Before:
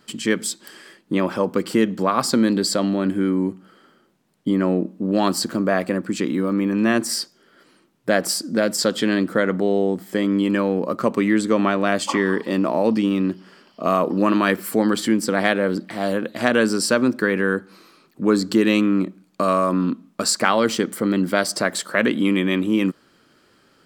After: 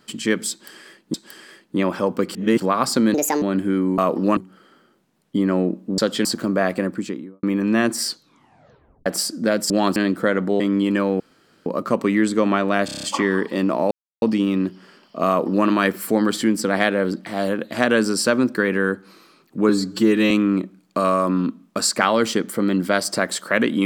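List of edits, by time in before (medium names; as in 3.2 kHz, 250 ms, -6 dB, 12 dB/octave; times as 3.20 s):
0.51–1.14 s: loop, 2 plays
1.72–1.97 s: reverse
2.51–2.93 s: speed 150%
5.10–5.36 s: swap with 8.81–9.08 s
5.96–6.54 s: studio fade out
7.18 s: tape stop 0.99 s
9.72–10.19 s: delete
10.79 s: insert room tone 0.46 s
11.98 s: stutter 0.03 s, 7 plays
12.86 s: insert silence 0.31 s
13.92–14.31 s: copy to 3.49 s
18.33–18.74 s: stretch 1.5×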